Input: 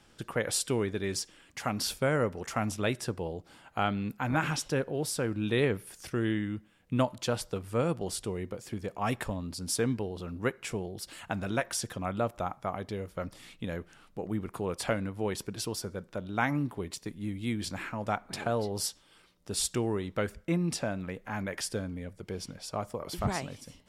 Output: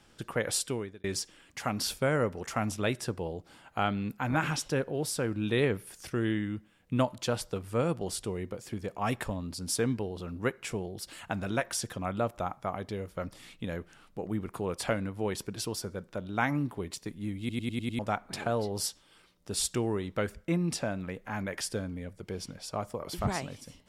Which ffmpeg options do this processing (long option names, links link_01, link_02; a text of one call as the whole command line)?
ffmpeg -i in.wav -filter_complex "[0:a]asplit=8[link_01][link_02][link_03][link_04][link_05][link_06][link_07][link_08];[link_01]atrim=end=1.04,asetpts=PTS-STARTPTS,afade=type=out:start_time=0.56:duration=0.48[link_09];[link_02]atrim=start=1.04:end=17.492,asetpts=PTS-STARTPTS,afade=type=in:duration=0.004:curve=hsin[link_10];[link_03]atrim=start=17.388:end=17.492[link_11];[link_04]atrim=start=17.388:end=17.492[link_12];[link_05]atrim=start=17.388:end=17.492[link_13];[link_06]atrim=start=17.388:end=17.492[link_14];[link_07]atrim=start=17.388:end=17.492[link_15];[link_08]atrim=start=17.988[link_16];[link_09][link_10]concat=n=2:v=0:a=1[link_17];[link_17][link_11]acrossfade=duration=0.004:curve1=hsin:curve2=hsin[link_18];[link_18][link_12]acrossfade=duration=0.004:curve1=hsin:curve2=hsin[link_19];[link_19][link_13]acrossfade=duration=0.004:curve1=hsin:curve2=hsin[link_20];[link_20][link_14]acrossfade=duration=0.004:curve1=hsin:curve2=hsin[link_21];[link_21][link_15]acrossfade=duration=0.004:curve1=hsin:curve2=hsin[link_22];[link_22][link_16]acrossfade=duration=0.004:curve1=hsin:curve2=hsin" out.wav